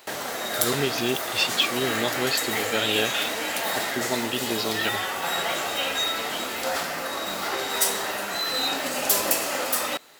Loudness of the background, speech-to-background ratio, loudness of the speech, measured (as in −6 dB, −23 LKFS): −25.5 LKFS, −1.5 dB, −27.0 LKFS